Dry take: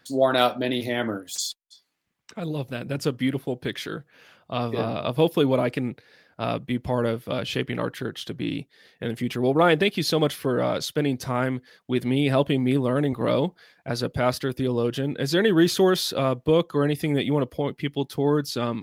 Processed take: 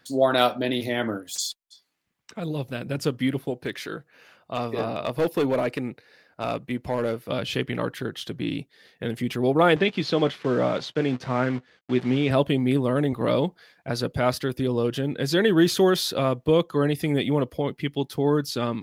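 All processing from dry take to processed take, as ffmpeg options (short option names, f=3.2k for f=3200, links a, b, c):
-filter_complex "[0:a]asettb=1/sr,asplit=3[a][b][c];[a]atrim=end=3.504[d];[b]atrim=start=3.5:end=7.3,asetpts=PTS-STARTPTS,afade=t=in:d=0.004:c=qsin,afade=t=out:st=3.796:d=0.004:c=qsin,bass=f=250:g=-5,treble=f=4k:g=-1,bandreject=f=3.3k:w=10,volume=17.5dB,asoftclip=hard,volume=-17.5dB[e];[c]atrim=start=7.296[f];[d][e]acrossfade=d=0.004:c1=hsin:c2=qsin[g];[g][f]acrossfade=d=0.004:c1=qsin:c2=hsin,asettb=1/sr,asplit=3[h][i][j];[h]atrim=end=9.764[k];[i]atrim=start=9.76:end=12.31,asetpts=PTS-STARTPTS,afade=t=in:d=0.004:c=qsin,afade=t=out:st=2.546:d=0.004:c=qsin,acrusher=bits=7:dc=4:mix=0:aa=0.000001,highpass=110,lowpass=3.5k,asplit=2[l][m];[m]adelay=16,volume=-12dB[n];[l][n]amix=inputs=2:normalize=0,atrim=end_sample=112455[o];[j]atrim=start=12.306[p];[k][o]acrossfade=d=0.004:c1=hsin:c2=qsin[q];[q][p]acrossfade=d=0.004:c1=qsin:c2=hsin"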